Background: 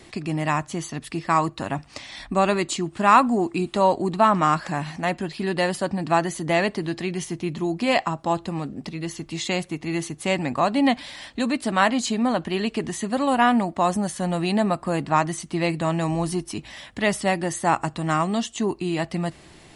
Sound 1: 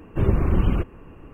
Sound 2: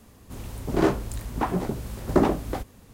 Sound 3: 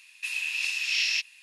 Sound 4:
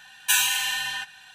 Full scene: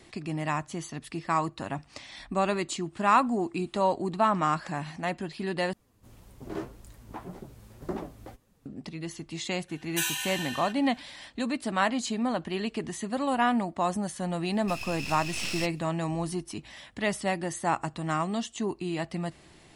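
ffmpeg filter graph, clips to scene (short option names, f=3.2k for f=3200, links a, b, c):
-filter_complex "[0:a]volume=-6.5dB[a];[2:a]flanger=delay=4.8:depth=5.5:regen=43:speed=1.8:shape=triangular[b];[3:a]aeval=exprs='max(val(0),0)':c=same[c];[a]asplit=2[d][e];[d]atrim=end=5.734[f];[b]atrim=end=2.93,asetpts=PTS-STARTPTS,volume=-11dB[g];[e]atrim=start=8.656[h];[4:a]atrim=end=1.34,asetpts=PTS-STARTPTS,volume=-9dB,afade=t=in:d=0.004:c=hsin,afade=t=out:st=1.336:d=0.004:c=hsin,adelay=9680[i];[c]atrim=end=1.42,asetpts=PTS-STARTPTS,volume=-3.5dB,afade=t=in:d=0.004:c=hsin,afade=t=out:st=1.416:d=0.004:c=hsin,adelay=14450[j];[f][g]acrossfade=d=0.004:c1=hsin:c2=hsin[k];[k][h]acrossfade=d=0.004:c1=hsin:c2=hsin[l];[l][i][j]amix=inputs=3:normalize=0"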